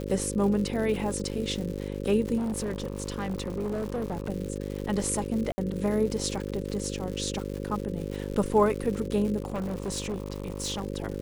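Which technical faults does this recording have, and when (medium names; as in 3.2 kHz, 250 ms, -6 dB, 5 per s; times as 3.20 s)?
buzz 50 Hz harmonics 11 -34 dBFS
crackle 180 per s -34 dBFS
2.37–4.30 s: clipped -26.5 dBFS
5.52–5.58 s: dropout 60 ms
9.42–10.84 s: clipped -27.5 dBFS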